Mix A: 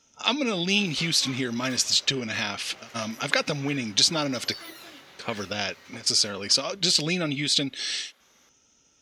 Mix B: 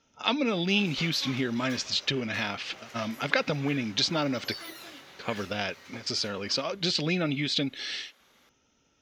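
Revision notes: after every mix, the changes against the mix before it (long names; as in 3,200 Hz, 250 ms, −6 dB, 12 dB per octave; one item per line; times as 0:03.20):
speech: add high-frequency loss of the air 180 metres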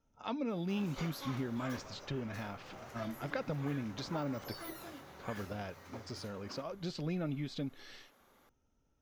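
speech −10.0 dB
master: remove meter weighting curve D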